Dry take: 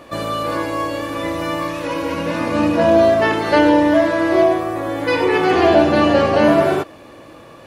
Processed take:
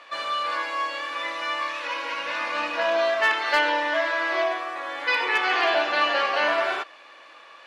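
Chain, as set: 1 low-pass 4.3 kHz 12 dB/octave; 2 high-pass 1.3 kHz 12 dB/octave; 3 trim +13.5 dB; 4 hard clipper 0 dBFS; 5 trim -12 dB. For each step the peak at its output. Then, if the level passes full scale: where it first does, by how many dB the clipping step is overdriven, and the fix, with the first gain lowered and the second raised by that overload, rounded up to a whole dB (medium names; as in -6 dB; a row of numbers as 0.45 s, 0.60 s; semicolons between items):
-2.0 dBFS, -8.5 dBFS, +5.0 dBFS, 0.0 dBFS, -12.0 dBFS; step 3, 5.0 dB; step 3 +8.5 dB, step 5 -7 dB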